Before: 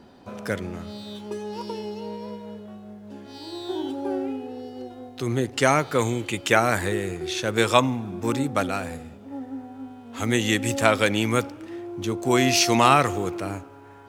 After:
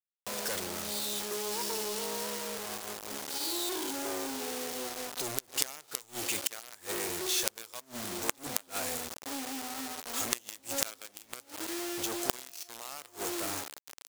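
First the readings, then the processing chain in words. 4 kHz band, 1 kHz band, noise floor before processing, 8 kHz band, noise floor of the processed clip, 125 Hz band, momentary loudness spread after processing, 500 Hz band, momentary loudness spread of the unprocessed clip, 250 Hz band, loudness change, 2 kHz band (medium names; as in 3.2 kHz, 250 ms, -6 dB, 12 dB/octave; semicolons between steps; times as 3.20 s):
-6.0 dB, -15.0 dB, -46 dBFS, -1.5 dB, -63 dBFS, -23.5 dB, 9 LU, -14.0 dB, 19 LU, -15.5 dB, -10.5 dB, -13.5 dB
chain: companded quantiser 2-bit; tone controls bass -13 dB, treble +10 dB; inverted gate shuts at 0 dBFS, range -27 dB; trim -8.5 dB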